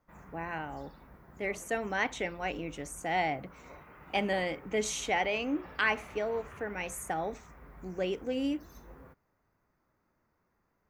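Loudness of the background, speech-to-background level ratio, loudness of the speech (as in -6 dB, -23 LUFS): -52.5 LUFS, 19.0 dB, -33.5 LUFS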